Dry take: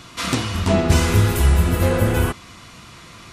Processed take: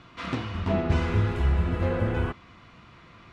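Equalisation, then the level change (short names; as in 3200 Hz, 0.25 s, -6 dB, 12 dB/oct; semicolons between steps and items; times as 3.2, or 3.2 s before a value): LPF 2600 Hz 12 dB/oct; -8.0 dB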